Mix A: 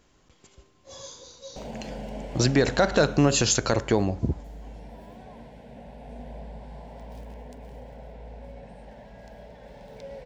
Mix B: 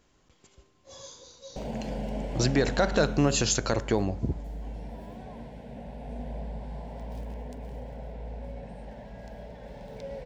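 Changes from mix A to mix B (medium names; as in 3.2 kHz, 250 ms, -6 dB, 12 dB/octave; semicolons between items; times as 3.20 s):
speech -3.5 dB; background: add bass shelf 400 Hz +4.5 dB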